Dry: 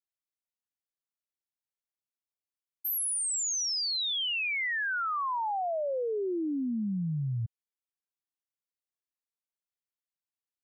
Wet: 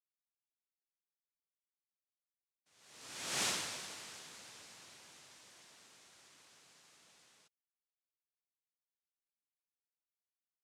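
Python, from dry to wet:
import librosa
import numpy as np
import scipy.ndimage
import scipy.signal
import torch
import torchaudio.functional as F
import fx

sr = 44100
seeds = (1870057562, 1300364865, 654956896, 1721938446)

y = fx.doppler_pass(x, sr, speed_mps=23, closest_m=1.9, pass_at_s=3.43)
y = fx.noise_vocoder(y, sr, seeds[0], bands=1)
y = y * librosa.db_to_amplitude(-2.5)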